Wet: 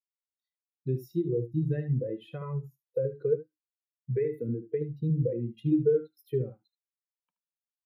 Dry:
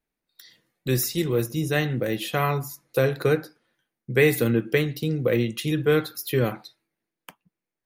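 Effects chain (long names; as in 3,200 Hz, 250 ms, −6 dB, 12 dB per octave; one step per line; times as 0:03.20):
downward compressor 16 to 1, threshold −25 dBFS, peak gain reduction 12.5 dB
notch filter 690 Hz, Q 12
on a send: single-tap delay 75 ms −6 dB
on the sum: every bin expanded away from the loudest bin 2.5 to 1
level −1.5 dB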